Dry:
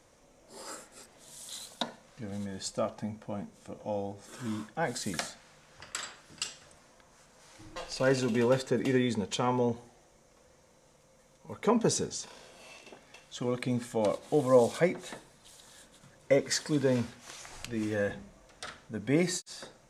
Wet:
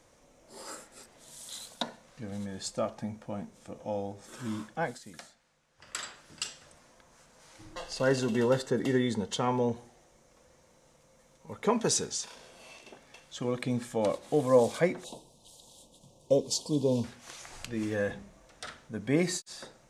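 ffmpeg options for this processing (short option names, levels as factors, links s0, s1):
-filter_complex "[0:a]asettb=1/sr,asplit=3[s0][s1][s2];[s0]atrim=end=7.734[s3];[s1]atrim=start=7.73:end=9.41,asetpts=PTS-STARTPTS,afade=t=in:d=0.004:c=qsin,afade=t=out:st=1.676:d=0.004:c=qsin,asuperstop=centerf=2400:order=12:qfactor=7.3[s4];[s2]atrim=start=9.406[s5];[s3][s4]acrossfade=d=0.004:c1=hsin:c2=qsin[s6];[s6][s5]acrossfade=d=0.004:c1=qsin:c2=hsin,asettb=1/sr,asplit=3[s7][s8][s9];[s7]atrim=end=11.704[s10];[s8]atrim=start=11.7:end=12.35,asetpts=PTS-STARTPTS,afade=t=in:d=0.004:c=qsin,afade=t=out:st=0.646:d=0.004:c=qsin,tiltshelf=f=790:g=-4[s11];[s9]atrim=start=12.346[s12];[s10][s11]acrossfade=d=0.004:c1=hsin:c2=qsin[s13];[s13][s12]acrossfade=d=0.004:c1=qsin:c2=hsin,asettb=1/sr,asplit=3[s14][s15][s16];[s14]atrim=end=15.044[s17];[s15]atrim=start=15.04:end=17.04,asetpts=PTS-STARTPTS,afade=t=in:d=0.004:c=qsin,afade=t=out:st=1.996:d=0.004:c=qsin,asuperstop=centerf=1700:order=8:qfactor=0.89[s18];[s16]atrim=start=17.036[s19];[s17][s18]acrossfade=d=0.004:c1=hsin:c2=qsin[s20];[s20][s19]acrossfade=d=0.004:c1=qsin:c2=hsin,asplit=3[s21][s22][s23];[s21]atrim=end=4.99,asetpts=PTS-STARTPTS,afade=t=out:st=4.82:d=0.17:silence=0.211349[s24];[s22]atrim=start=4.99:end=5.77,asetpts=PTS-STARTPTS,volume=0.211[s25];[s23]atrim=start=5.77,asetpts=PTS-STARTPTS,afade=t=in:d=0.17:silence=0.211349[s26];[s24][s25][s26]concat=n=3:v=0:a=1"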